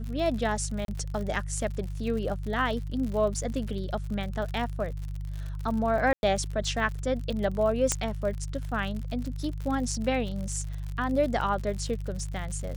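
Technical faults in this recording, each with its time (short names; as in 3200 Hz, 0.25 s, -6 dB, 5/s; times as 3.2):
crackle 75/s -34 dBFS
hum 50 Hz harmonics 3 -34 dBFS
0.85–0.88 gap 32 ms
6.13–6.23 gap 0.101 s
7.92 pop -9 dBFS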